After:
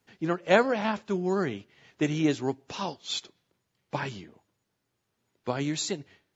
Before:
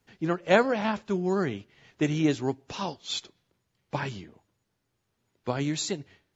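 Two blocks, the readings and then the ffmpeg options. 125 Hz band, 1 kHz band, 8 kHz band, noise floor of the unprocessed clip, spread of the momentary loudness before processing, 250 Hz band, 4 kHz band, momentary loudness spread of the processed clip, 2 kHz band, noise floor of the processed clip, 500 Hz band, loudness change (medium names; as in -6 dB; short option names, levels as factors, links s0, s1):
-2.0 dB, 0.0 dB, no reading, -78 dBFS, 14 LU, -1.0 dB, 0.0 dB, 14 LU, 0.0 dB, -80 dBFS, -0.5 dB, -0.5 dB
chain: -af "lowshelf=f=72:g=-11.5"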